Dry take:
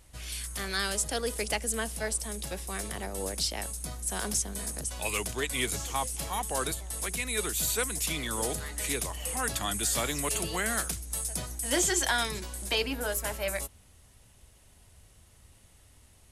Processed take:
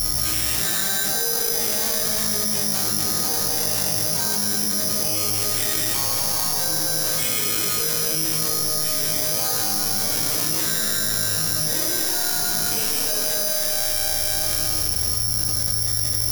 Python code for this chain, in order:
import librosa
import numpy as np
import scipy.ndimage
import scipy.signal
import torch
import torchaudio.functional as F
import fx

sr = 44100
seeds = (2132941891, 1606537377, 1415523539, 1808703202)

p1 = fx.halfwave_hold(x, sr)
p2 = fx.highpass(p1, sr, hz=60.0, slope=6)
p3 = fx.low_shelf(p2, sr, hz=94.0, db=11.5)
p4 = np.clip(p3, -10.0 ** (-22.0 / 20.0), 10.0 ** (-22.0 / 20.0))
p5 = fx.resonator_bank(p4, sr, root=44, chord='fifth', decay_s=0.35)
p6 = p5 + fx.echo_single(p5, sr, ms=208, db=-6.0, dry=0)
p7 = fx.rev_schroeder(p6, sr, rt60_s=2.1, comb_ms=25, drr_db=-8.0)
p8 = (np.kron(scipy.signal.resample_poly(p7, 1, 8), np.eye(8)[0]) * 8)[:len(p7)]
p9 = fx.env_flatten(p8, sr, amount_pct=100)
y = p9 * 10.0 ** (-2.0 / 20.0)